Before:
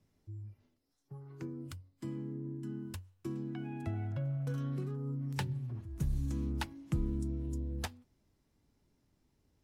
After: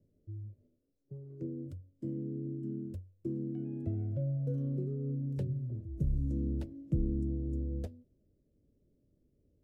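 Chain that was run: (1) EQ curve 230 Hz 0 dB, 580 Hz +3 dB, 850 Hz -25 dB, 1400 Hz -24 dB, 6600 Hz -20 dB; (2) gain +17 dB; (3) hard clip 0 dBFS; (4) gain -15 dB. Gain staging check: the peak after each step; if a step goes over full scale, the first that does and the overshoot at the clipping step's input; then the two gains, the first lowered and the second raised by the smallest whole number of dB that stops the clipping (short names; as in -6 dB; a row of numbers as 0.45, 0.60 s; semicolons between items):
-22.0, -5.0, -5.0, -20.0 dBFS; no overload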